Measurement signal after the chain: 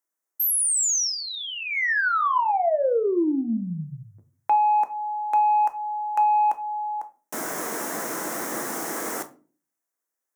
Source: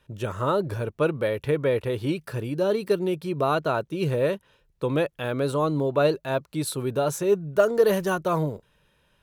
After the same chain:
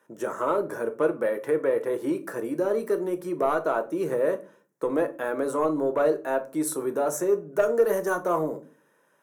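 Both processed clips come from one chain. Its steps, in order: high-pass 250 Hz 24 dB/octave; high-order bell 3.4 kHz -14.5 dB 1.2 oct; in parallel at +2.5 dB: compression, threshold -28 dBFS; on the sum: saturation -9 dBFS; simulated room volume 210 m³, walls furnished, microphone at 0.7 m; trim -4.5 dB

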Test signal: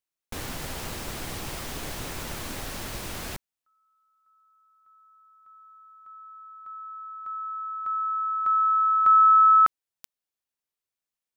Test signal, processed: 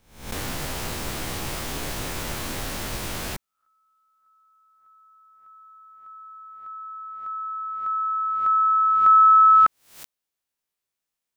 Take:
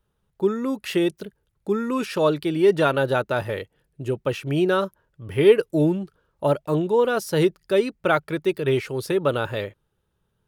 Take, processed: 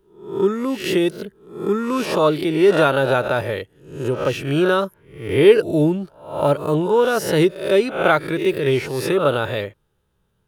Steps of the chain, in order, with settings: reverse spectral sustain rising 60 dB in 0.53 s; trim +2.5 dB

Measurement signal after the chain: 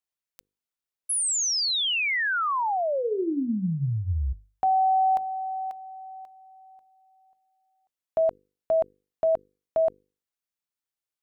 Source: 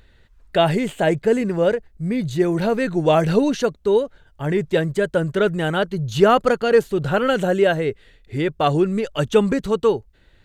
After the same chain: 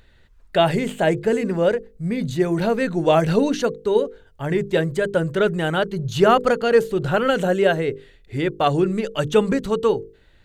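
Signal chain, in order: hum notches 50/100/150/200/250/300/350/400/450/500 Hz

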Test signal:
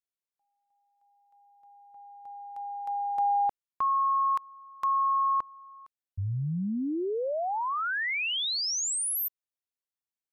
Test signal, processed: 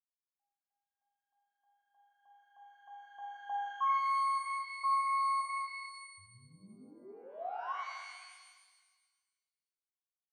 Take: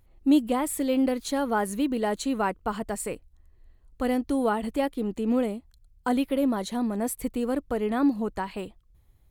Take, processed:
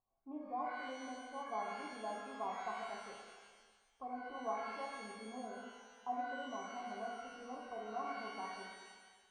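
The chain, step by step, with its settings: cascade formant filter a; small resonant body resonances 220/400/1100 Hz, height 9 dB; pitch-shifted reverb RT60 1.5 s, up +12 st, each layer -8 dB, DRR -1.5 dB; trim -8.5 dB

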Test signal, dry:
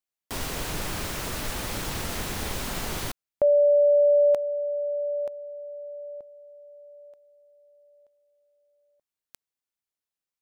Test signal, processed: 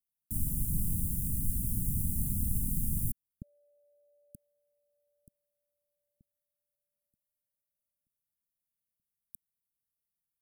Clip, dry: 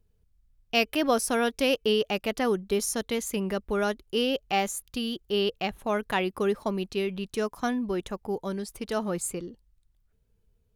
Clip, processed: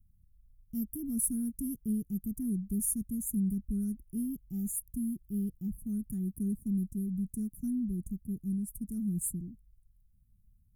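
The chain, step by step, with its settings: inverse Chebyshev band-stop 510–4600 Hz, stop band 50 dB; trim +3.5 dB

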